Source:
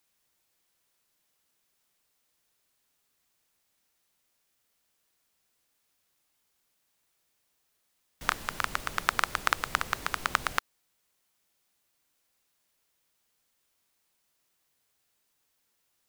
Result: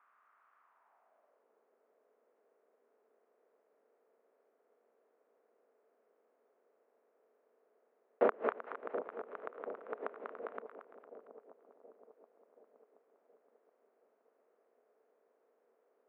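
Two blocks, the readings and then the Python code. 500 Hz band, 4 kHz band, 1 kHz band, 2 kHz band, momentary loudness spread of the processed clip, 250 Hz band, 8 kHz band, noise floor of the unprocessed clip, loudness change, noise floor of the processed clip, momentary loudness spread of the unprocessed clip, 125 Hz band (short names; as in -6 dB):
+8.5 dB, under -30 dB, -11.0 dB, -17.5 dB, 23 LU, -0.5 dB, under -35 dB, -76 dBFS, -9.0 dB, -76 dBFS, 4 LU, under -20 dB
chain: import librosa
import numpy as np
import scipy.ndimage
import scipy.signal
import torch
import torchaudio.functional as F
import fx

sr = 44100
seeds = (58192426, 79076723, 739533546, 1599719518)

p1 = fx.bin_compress(x, sr, power=0.6)
p2 = fx.leveller(p1, sr, passes=5)
p3 = fx.filter_sweep_bandpass(p2, sr, from_hz=1200.0, to_hz=470.0, start_s=0.59, end_s=1.46, q=4.1)
p4 = fx.gate_flip(p3, sr, shuts_db=-22.0, range_db=-29)
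p5 = fx.cabinet(p4, sr, low_hz=220.0, low_slope=24, high_hz=2400.0, hz=(230.0, 420.0, 660.0), db=(9, 7, 7))
p6 = p5 + fx.echo_split(p5, sr, split_hz=850.0, low_ms=725, high_ms=228, feedback_pct=52, wet_db=-10.0, dry=0)
y = F.gain(torch.from_numpy(p6), 4.5).numpy()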